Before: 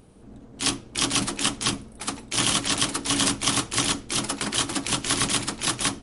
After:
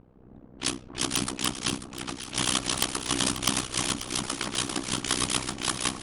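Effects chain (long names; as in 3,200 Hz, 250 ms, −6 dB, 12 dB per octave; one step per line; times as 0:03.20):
low-pass that shuts in the quiet parts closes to 1,400 Hz, open at −22 dBFS
wrap-around overflow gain 7.5 dB
amplitude modulation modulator 63 Hz, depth 95%
on a send: delay that swaps between a low-pass and a high-pass 269 ms, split 1,200 Hz, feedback 79%, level −9.5 dB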